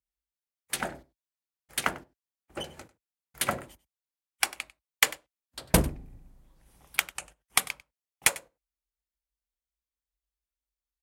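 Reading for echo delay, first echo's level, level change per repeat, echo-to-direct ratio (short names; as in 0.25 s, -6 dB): 97 ms, -20.0 dB, no steady repeat, -20.0 dB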